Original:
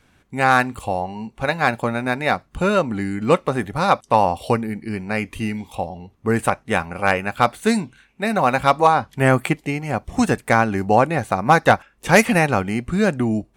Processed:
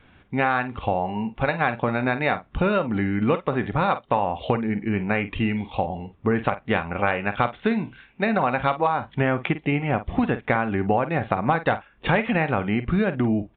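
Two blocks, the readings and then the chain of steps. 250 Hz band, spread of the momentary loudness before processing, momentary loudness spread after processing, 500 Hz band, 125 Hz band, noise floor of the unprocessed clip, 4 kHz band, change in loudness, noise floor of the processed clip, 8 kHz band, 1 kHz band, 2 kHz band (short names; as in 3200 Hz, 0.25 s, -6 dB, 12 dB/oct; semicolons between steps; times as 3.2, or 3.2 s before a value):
-2.0 dB, 10 LU, 4 LU, -4.5 dB, -2.5 dB, -59 dBFS, -6.0 dB, -4.5 dB, -57 dBFS, under -40 dB, -5.5 dB, -4.5 dB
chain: compressor, threshold -22 dBFS, peak gain reduction 13.5 dB; doubler 49 ms -12.5 dB; downsampling 8000 Hz; gain +3.5 dB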